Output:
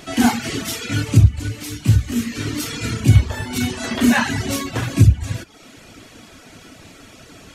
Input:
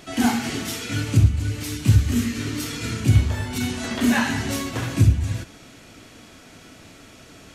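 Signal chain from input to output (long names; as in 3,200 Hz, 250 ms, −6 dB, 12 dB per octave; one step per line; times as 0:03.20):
reverb reduction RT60 0.68 s
0:01.48–0:02.32: tuned comb filter 57 Hz, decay 0.23 s, harmonics all, mix 60%
level +5 dB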